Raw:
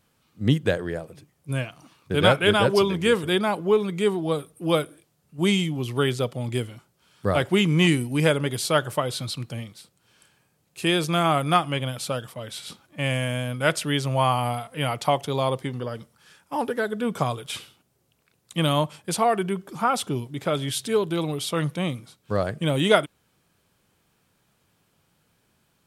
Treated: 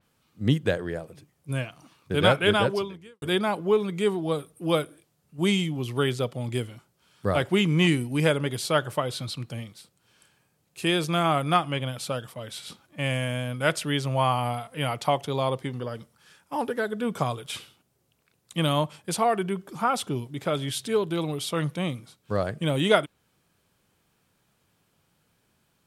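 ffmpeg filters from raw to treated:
-filter_complex "[0:a]asplit=2[a][b];[a]atrim=end=3.22,asetpts=PTS-STARTPTS,afade=t=out:st=2.6:d=0.62:c=qua[c];[b]atrim=start=3.22,asetpts=PTS-STARTPTS,afade=t=in:d=0.004:c=hsin[d];[c][d]concat=n=2:v=0:a=1,adynamicequalizer=threshold=0.01:dfrequency=5000:dqfactor=0.7:tfrequency=5000:tqfactor=0.7:attack=5:release=100:ratio=0.375:range=2:mode=cutabove:tftype=highshelf,volume=-2dB"

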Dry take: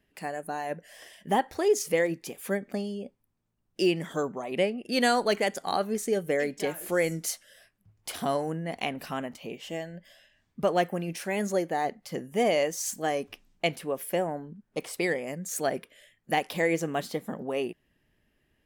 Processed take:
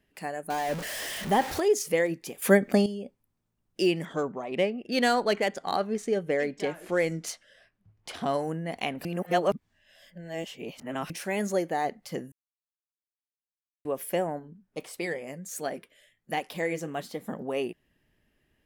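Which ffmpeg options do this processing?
-filter_complex "[0:a]asettb=1/sr,asplit=3[a][b][c];[a]atrim=end=0.504[d];[b]atrim=start=0.5:end=1.6,asetpts=PTS-STARTPTS,afade=t=in:d=0.004:c=qsin,afade=t=out:st=1.096:d=0.004:c=qsin,aeval=exprs='val(0)+0.5*0.0299*sgn(val(0))':c=same[e];[c]atrim=start=1.596[f];[d][e]acrossfade=d=0.004:c1=hsin:c2=qsin[g];[g][f]acrossfade=d=0.004:c1=qsin:c2=hsin,asettb=1/sr,asplit=3[h][i][j];[h]atrim=end=4.054[k];[i]atrim=start=4.05:end=8.34,asetpts=PTS-STARTPTS,afade=t=in:d=0.004:c=qsin,afade=t=out:st=4.286:d=0.004:c=qsin,adynamicsmooth=sensitivity=4.5:basefreq=4.7k[l];[j]atrim=start=8.336[m];[k][l]acrossfade=d=0.004:c1=hsin:c2=qsin[n];[n][m]acrossfade=d=0.004:c1=qsin:c2=hsin,asplit=3[o][p][q];[o]afade=t=out:st=14.38:d=0.02[r];[p]flanger=delay=3.3:depth=4.9:regen=-68:speed=1.4:shape=triangular,afade=t=in:st=14.38:d=0.02,afade=t=out:st=17.19:d=0.02[s];[q]afade=t=in:st=17.19:d=0.02[t];[r][s][t]amix=inputs=3:normalize=0,asplit=7[u][v][w][x][y][z][aa];[u]atrim=end=2.422[ab];[v]atrim=start=2.418:end=2.862,asetpts=PTS-STARTPTS,volume=10dB[ac];[w]atrim=start=2.858:end=9.052[ad];[x]atrim=start=9.048:end=11.102,asetpts=PTS-STARTPTS,areverse[ae];[y]atrim=start=11.098:end=12.32,asetpts=PTS-STARTPTS,afade=t=out:st=1.218:d=0.004:c=hsin[af];[z]atrim=start=12.32:end=13.85,asetpts=PTS-STARTPTS,volume=0[ag];[aa]atrim=start=13.85,asetpts=PTS-STARTPTS,afade=t=in:d=0.004:c=hsin[ah];[ab][ac]acrossfade=d=0.004:c1=hsin:c2=hsin[ai];[ai][ad]acrossfade=d=0.004:c1=hsin:c2=hsin[aj];[aj][ae]acrossfade=d=0.004:c1=hsin:c2=hsin[ak];[af][ag][ah]concat=n=3:v=0:a=1[al];[ak][al]acrossfade=d=0.004:c1=hsin:c2=hsin"

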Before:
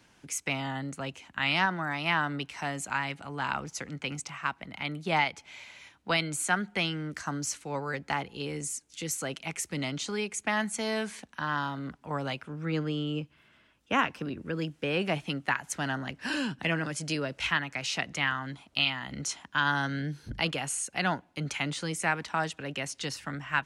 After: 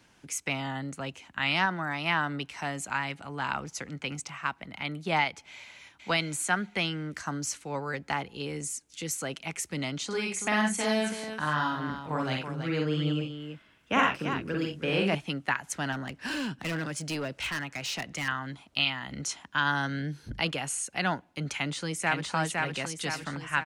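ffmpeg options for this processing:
-filter_complex "[0:a]asplit=2[a][b];[b]afade=t=in:st=5.51:d=0.01,afade=t=out:st=5.95:d=0.01,aecho=0:1:480|960|1440|1920:0.595662|0.208482|0.0729686|0.025539[c];[a][c]amix=inputs=2:normalize=0,asettb=1/sr,asplit=3[d][e][f];[d]atrim=end=10.064[g];[e]atrim=start=10.06:end=15.15,asetpts=PTS-STARTPTS,afade=t=in:d=0.004:c=qsin,afade=t=out:st=5.086:d=0.004:c=qsin,aecho=1:1:46|61|88|330:0.708|0.531|0.266|0.422,atrim=end_sample=224469[h];[f]atrim=start=15.146[i];[g][h]acrossfade=d=0.004:c1=hsin:c2=qsin[j];[j][i]acrossfade=d=0.004:c1=qsin:c2=hsin,asettb=1/sr,asplit=3[k][l][m];[k]atrim=end=15.924[n];[l]atrim=start=15.92:end=18.28,asetpts=PTS-STARTPTS,afade=t=in:d=0.004:c=qsin,afade=t=out:st=2.356:d=0.004:c=qsin,asoftclip=type=hard:threshold=-28.5dB[o];[m]atrim=start=18.276[p];[n][o]acrossfade=d=0.004:c1=hsin:c2=qsin[q];[q][p]acrossfade=d=0.004:c1=qsin:c2=hsin,asplit=2[r][s];[s]afade=t=in:st=21.55:d=0.01,afade=t=out:st=22.34:d=0.01,aecho=0:1:510|1020|1530|2040|2550|3060|3570|4080:0.749894|0.412442|0.226843|0.124764|0.06862|0.037741|0.0207576|0.0114167[t];[r][t]amix=inputs=2:normalize=0"

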